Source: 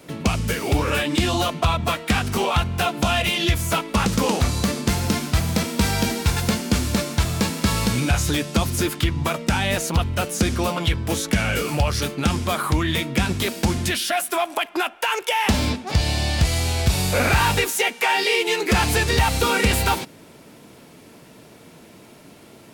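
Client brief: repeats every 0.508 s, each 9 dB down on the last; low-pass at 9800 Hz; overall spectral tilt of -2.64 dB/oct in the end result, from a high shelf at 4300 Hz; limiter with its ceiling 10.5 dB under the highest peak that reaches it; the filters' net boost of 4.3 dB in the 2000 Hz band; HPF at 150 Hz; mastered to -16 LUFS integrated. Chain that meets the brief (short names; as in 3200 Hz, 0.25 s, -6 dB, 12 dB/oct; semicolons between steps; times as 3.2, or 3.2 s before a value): HPF 150 Hz; LPF 9800 Hz; bell 2000 Hz +4 dB; high shelf 4300 Hz +6 dB; limiter -13.5 dBFS; feedback echo 0.508 s, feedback 35%, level -9 dB; gain +6.5 dB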